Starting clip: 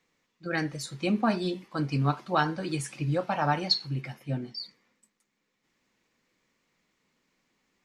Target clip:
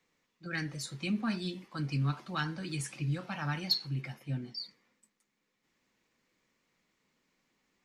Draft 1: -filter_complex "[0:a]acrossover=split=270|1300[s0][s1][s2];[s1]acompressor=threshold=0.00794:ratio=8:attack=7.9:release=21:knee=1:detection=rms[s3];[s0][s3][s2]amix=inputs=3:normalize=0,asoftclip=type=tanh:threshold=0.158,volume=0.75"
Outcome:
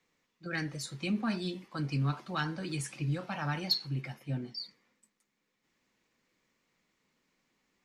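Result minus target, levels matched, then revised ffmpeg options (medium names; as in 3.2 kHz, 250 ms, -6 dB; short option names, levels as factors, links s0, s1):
compression: peak gain reduction -6.5 dB
-filter_complex "[0:a]acrossover=split=270|1300[s0][s1][s2];[s1]acompressor=threshold=0.00335:ratio=8:attack=7.9:release=21:knee=1:detection=rms[s3];[s0][s3][s2]amix=inputs=3:normalize=0,asoftclip=type=tanh:threshold=0.158,volume=0.75"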